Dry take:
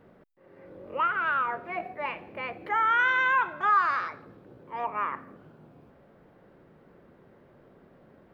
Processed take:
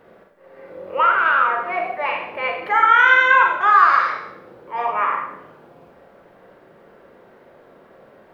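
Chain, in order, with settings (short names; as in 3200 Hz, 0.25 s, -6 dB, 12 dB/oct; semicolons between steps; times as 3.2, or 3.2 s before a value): EQ curve 130 Hz 0 dB, 270 Hz +3 dB, 520 Hz +11 dB; Schroeder reverb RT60 0.67 s, combs from 33 ms, DRR 1 dB; gain -2.5 dB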